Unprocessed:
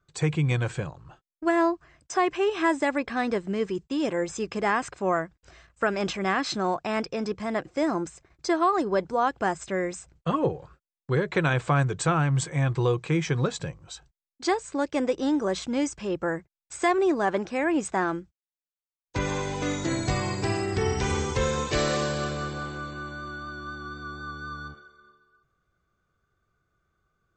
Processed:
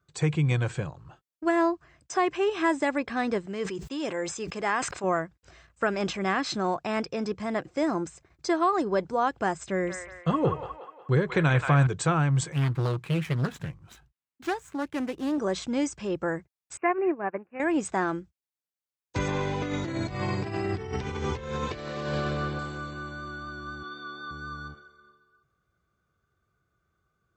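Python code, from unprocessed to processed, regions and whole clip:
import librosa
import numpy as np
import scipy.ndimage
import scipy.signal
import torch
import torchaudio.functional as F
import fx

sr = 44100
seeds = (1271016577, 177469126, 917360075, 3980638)

y = fx.chain(x, sr, fx.low_shelf(hz=330.0, db=-9.5),
    fx.sustainer(db_per_s=72.0), at=(3.46, 5.04))
y = fx.chain(y, sr, fx.low_shelf(hz=130.0, db=6.5),
    fx.echo_wet_bandpass(ms=181, feedback_pct=47, hz=1500.0, wet_db=-3.5), at=(9.69, 11.87))
y = fx.chain(y, sr, fx.median_filter(points=9),
    fx.peak_eq(hz=520.0, db=-9.0, octaves=0.95),
    fx.doppler_dist(depth_ms=0.58), at=(12.52, 15.38))
y = fx.chain(y, sr, fx.highpass(hz=97.0, slope=12),
    fx.resample_bad(factor=8, down='none', up='filtered'),
    fx.upward_expand(threshold_db=-38.0, expansion=2.5), at=(16.77, 17.6))
y = fx.chain(y, sr, fx.over_compress(threshold_db=-29.0, ratio=-0.5),
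    fx.lowpass(hz=3900.0, slope=12), at=(19.28, 22.59))
y = fx.chain(y, sr, fx.bandpass_edges(low_hz=300.0, high_hz=4700.0),
    fx.peak_eq(hz=3700.0, db=9.0, octaves=0.46), at=(23.83, 24.31))
y = scipy.signal.sosfilt(scipy.signal.butter(2, 58.0, 'highpass', fs=sr, output='sos'), y)
y = fx.low_shelf(y, sr, hz=170.0, db=3.0)
y = y * 10.0 ** (-1.5 / 20.0)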